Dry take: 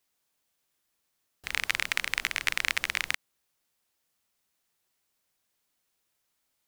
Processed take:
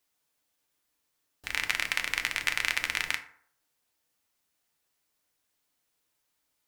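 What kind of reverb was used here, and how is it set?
FDN reverb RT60 0.61 s, low-frequency decay 0.8×, high-frequency decay 0.5×, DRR 5.5 dB; trim -1 dB

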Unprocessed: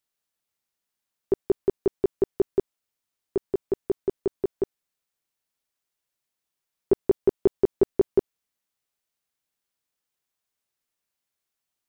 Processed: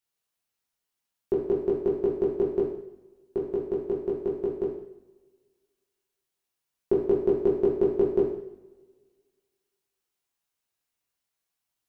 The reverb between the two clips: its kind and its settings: two-slope reverb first 0.68 s, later 1.8 s, from -19 dB, DRR -3.5 dB; trim -5 dB

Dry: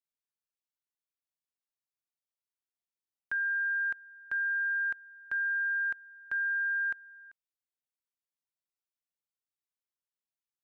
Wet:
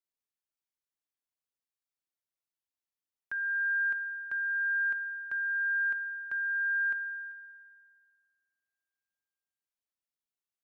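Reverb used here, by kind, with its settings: spring tank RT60 2.4 s, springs 51/56 ms, chirp 55 ms, DRR 11.5 dB; trim -3 dB

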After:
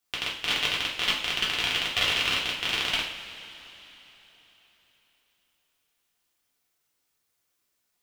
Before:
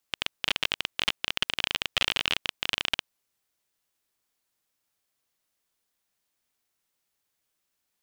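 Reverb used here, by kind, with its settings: two-slope reverb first 0.48 s, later 3.9 s, from -18 dB, DRR -5.5 dB; trim -3.5 dB

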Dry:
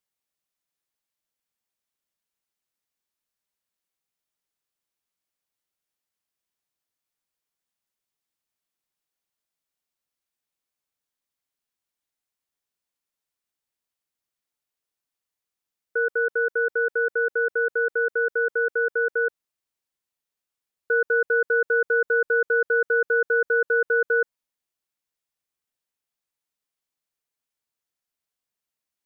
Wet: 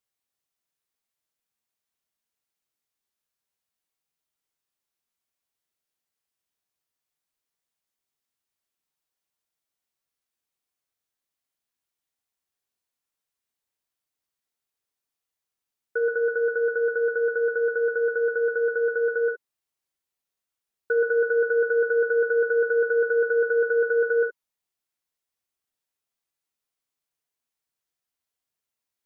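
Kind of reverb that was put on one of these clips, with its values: gated-style reverb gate 90 ms flat, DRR 4 dB; trim -1.5 dB

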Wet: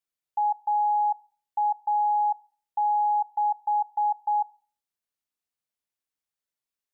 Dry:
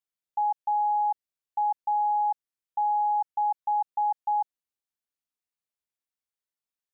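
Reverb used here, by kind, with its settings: FDN reverb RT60 0.42 s, low-frequency decay 1×, high-frequency decay 0.95×, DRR 19 dB; trim +1 dB

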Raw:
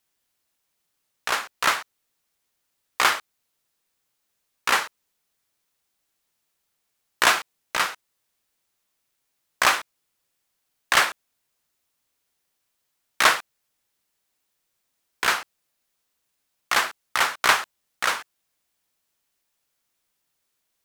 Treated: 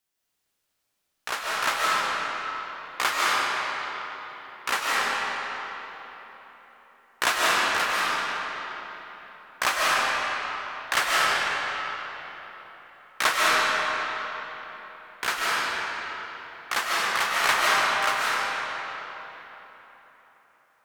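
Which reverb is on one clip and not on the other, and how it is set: algorithmic reverb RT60 4 s, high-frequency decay 0.7×, pre-delay 110 ms, DRR -6.5 dB; trim -6 dB

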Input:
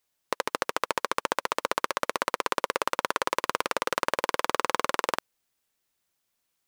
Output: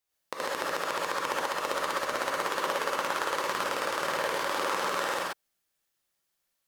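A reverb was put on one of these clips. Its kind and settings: gated-style reverb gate 150 ms rising, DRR -6 dB; trim -8 dB

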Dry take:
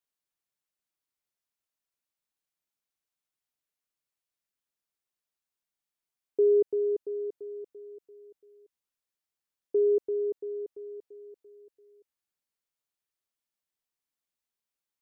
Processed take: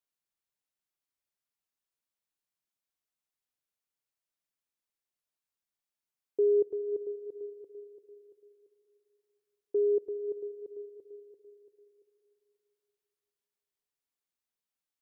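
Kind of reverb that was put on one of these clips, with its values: algorithmic reverb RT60 2.6 s, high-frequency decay 0.25×, pre-delay 110 ms, DRR 16.5 dB; trim -3 dB

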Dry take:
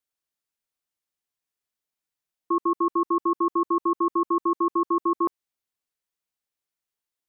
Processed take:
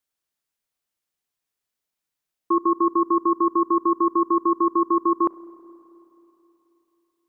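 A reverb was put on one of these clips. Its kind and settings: spring tank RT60 3.3 s, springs 32/53 ms, chirp 30 ms, DRR 17 dB; trim +3.5 dB

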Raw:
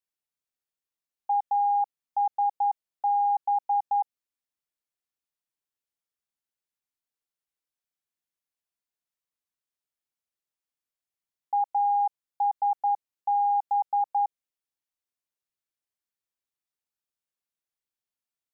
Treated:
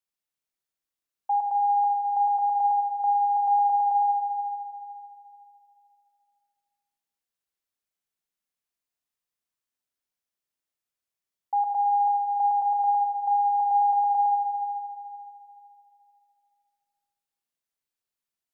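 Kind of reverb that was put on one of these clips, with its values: Schroeder reverb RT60 2.7 s, combs from 25 ms, DRR 3 dB

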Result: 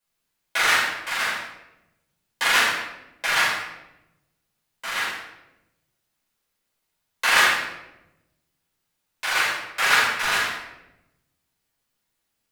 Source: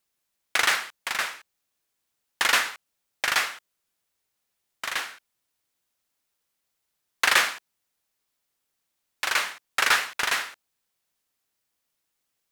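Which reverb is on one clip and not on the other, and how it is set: simulated room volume 340 m³, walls mixed, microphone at 5.1 m; trim -9 dB

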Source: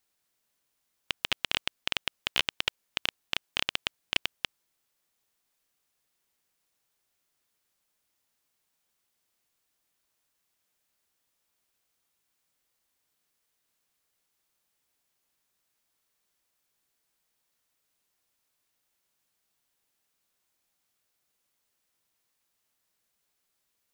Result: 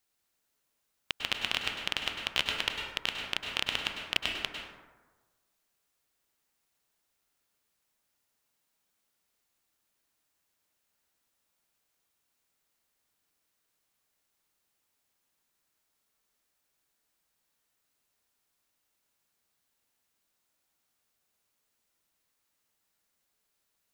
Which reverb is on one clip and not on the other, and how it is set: plate-style reverb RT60 1.3 s, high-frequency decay 0.4×, pre-delay 90 ms, DRR 1.5 dB; trim -2 dB

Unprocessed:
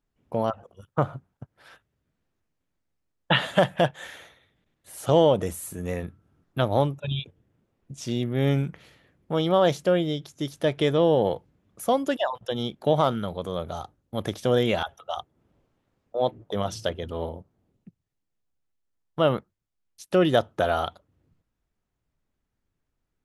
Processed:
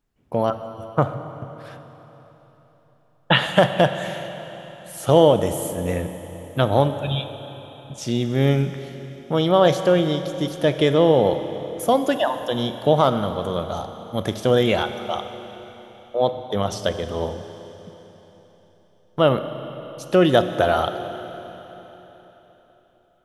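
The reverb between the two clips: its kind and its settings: Schroeder reverb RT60 3.9 s, combs from 30 ms, DRR 9 dB; trim +4.5 dB

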